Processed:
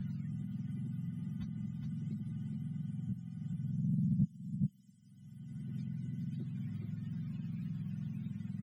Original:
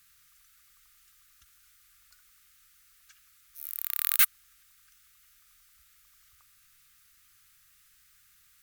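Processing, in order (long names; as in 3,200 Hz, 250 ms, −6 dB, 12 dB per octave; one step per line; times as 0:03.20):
frequency axis turned over on the octave scale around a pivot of 550 Hz
comb filter 5.5 ms, depth 99%
on a send: single-tap delay 416 ms −8 dB
on the sum: dynamic equaliser 200 Hz, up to +8 dB, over −49 dBFS, Q 1.1
multiband upward and downward compressor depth 100%
level +2 dB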